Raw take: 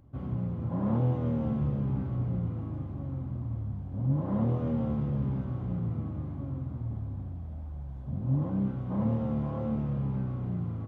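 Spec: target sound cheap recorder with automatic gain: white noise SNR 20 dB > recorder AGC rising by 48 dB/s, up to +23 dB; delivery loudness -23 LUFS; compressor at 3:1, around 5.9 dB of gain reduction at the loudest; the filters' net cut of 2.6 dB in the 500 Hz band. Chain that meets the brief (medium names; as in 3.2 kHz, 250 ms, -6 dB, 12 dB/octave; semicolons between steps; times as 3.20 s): peaking EQ 500 Hz -3 dB; compression 3:1, threshold -31 dBFS; white noise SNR 20 dB; recorder AGC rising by 48 dB/s, up to +23 dB; trim +12 dB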